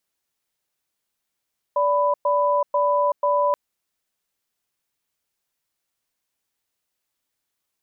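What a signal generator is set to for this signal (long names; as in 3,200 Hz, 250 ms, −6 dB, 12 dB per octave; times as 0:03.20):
tone pair in a cadence 581 Hz, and 994 Hz, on 0.38 s, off 0.11 s, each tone −19.5 dBFS 1.78 s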